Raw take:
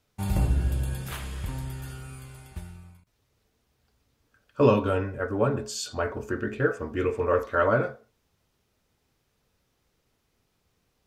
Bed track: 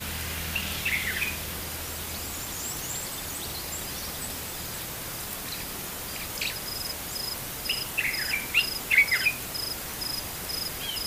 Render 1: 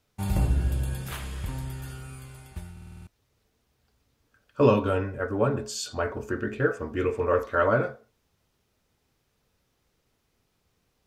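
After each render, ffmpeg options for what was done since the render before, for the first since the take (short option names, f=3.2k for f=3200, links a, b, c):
-filter_complex "[0:a]asplit=8[a][b][c][d][e][f][g][h];[a]atrim=end=2.772[i];[b]atrim=start=2.718:end=2.772[j];[c]atrim=start=2.718:end=2.772[k];[d]atrim=start=2.718:end=2.772[l];[e]atrim=start=2.718:end=2.772[m];[f]atrim=start=2.718:end=2.772[n];[g]atrim=start=2.718:end=2.772[o];[h]atrim=start=3.068[p];[i][j]acrossfade=d=0.004:c1=hsin:c2=hsin[q];[q][k]acrossfade=d=0.004:c1=hsin:c2=hsin[r];[r][l]acrossfade=d=0.004:c1=hsin:c2=hsin[s];[s][m]acrossfade=d=0.004:c1=hsin:c2=hsin[t];[t][n]acrossfade=d=0.004:c1=hsin:c2=hsin[u];[u][o]acrossfade=d=0.004:c1=hsin:c2=hsin[v];[v][p]acrossfade=d=0.004:c1=hsin:c2=hsin"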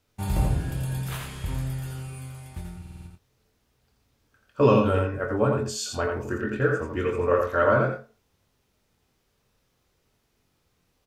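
-filter_complex "[0:a]asplit=2[a][b];[b]adelay=23,volume=-8dB[c];[a][c]amix=inputs=2:normalize=0,aecho=1:1:85:0.596"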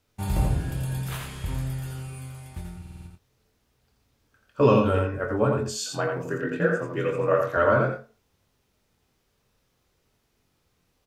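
-filter_complex "[0:a]asettb=1/sr,asplit=3[a][b][c];[a]atrim=end=5.844[d];[b]atrim=start=5.84:end=7.57,asetpts=PTS-STARTPTS,afade=t=in:d=0.004:c=qsin,afade=t=out:st=1.726:d=0.004:c=qsin,afreqshift=42[e];[c]atrim=start=7.566[f];[d][e]acrossfade=d=0.004:c1=hsin:c2=qsin[g];[g][f]acrossfade=d=0.004:c1=qsin:c2=hsin"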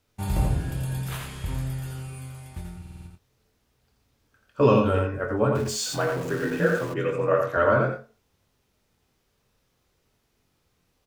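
-filter_complex "[0:a]asettb=1/sr,asplit=3[a][b][c];[a]atrim=end=5.554[d];[b]atrim=start=5.55:end=6.94,asetpts=PTS-STARTPTS,afade=t=in:d=0.004:c=qsin,afade=t=out:st=1.386:d=0.004:c=qsin,aeval=exprs='val(0)+0.5*0.0211*sgn(val(0))':c=same[e];[c]atrim=start=6.936[f];[d][e]acrossfade=d=0.004:c1=hsin:c2=qsin[g];[g][f]acrossfade=d=0.004:c1=qsin:c2=hsin"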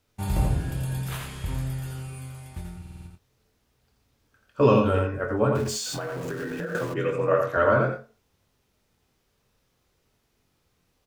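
-filter_complex "[0:a]asettb=1/sr,asplit=3[a][b][c];[a]atrim=end=5.774[d];[b]atrim=start=5.77:end=6.75,asetpts=PTS-STARTPTS,afade=t=in:d=0.004:c=qsin,afade=t=out:st=0.976:d=0.004:c=qsin,acompressor=threshold=-28dB:ratio=10:attack=3.2:release=140:knee=1:detection=peak[e];[c]atrim=start=6.746[f];[d][e]acrossfade=d=0.004:c1=hsin:c2=qsin[g];[g][f]acrossfade=d=0.004:c1=qsin:c2=hsin"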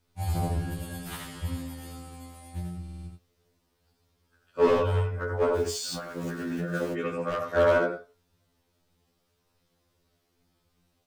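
-af "asoftclip=type=hard:threshold=-16.5dB,afftfilt=real='re*2*eq(mod(b,4),0)':imag='im*2*eq(mod(b,4),0)':win_size=2048:overlap=0.75"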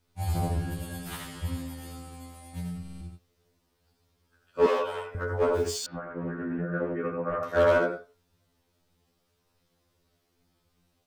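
-filter_complex "[0:a]asettb=1/sr,asplit=3[a][b][c];[a]atrim=end=2.534[d];[b]atrim=start=2.53:end=3.01,asetpts=PTS-STARTPTS,afade=t=in:d=0.004:c=qsin,afade=t=out:st=0.476:d=0.004:c=qsin,aecho=1:1:7.2:0.96,atrim=end_sample=21168[e];[c]atrim=start=3.006[f];[d][e]acrossfade=d=0.004:c1=hsin:c2=qsin[g];[g][f]acrossfade=d=0.004:c1=qsin:c2=hsin,asettb=1/sr,asplit=3[h][i][j];[h]atrim=end=4.664[k];[i]atrim=start=4.66:end=5.15,asetpts=PTS-STARTPTS,afade=t=in:d=0.004:c=qsin,afade=t=out:st=0.486:d=0.004:c=qsin,highpass=490[l];[j]atrim=start=5.146[m];[k][l]acrossfade=d=0.004:c1=hsin:c2=qsin[n];[n][m]acrossfade=d=0.004:c1=qsin:c2=hsin,asettb=1/sr,asplit=3[o][p][q];[o]atrim=end=5.864[r];[p]atrim=start=5.86:end=7.43,asetpts=PTS-STARTPTS,afade=t=in:d=0.004:c=qsin,afade=t=out:st=1.566:d=0.004:c=qsin,lowpass=f=1.8k:w=0.5412,lowpass=f=1.8k:w=1.3066[s];[q]atrim=start=7.426[t];[r][s]acrossfade=d=0.004:c1=hsin:c2=qsin[u];[u][t]acrossfade=d=0.004:c1=qsin:c2=hsin"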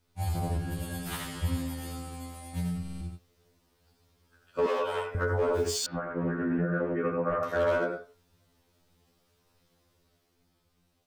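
-af "alimiter=limit=-22.5dB:level=0:latency=1:release=223,dynaudnorm=f=100:g=21:m=3.5dB"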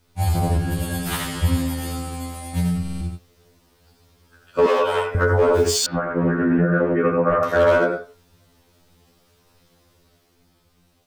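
-af "volume=10.5dB"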